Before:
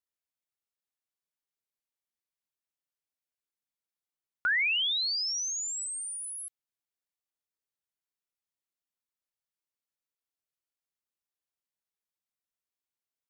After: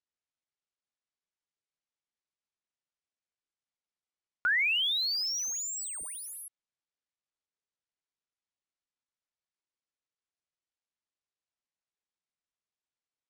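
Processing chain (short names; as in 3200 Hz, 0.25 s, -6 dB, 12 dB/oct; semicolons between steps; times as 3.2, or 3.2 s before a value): median filter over 3 samples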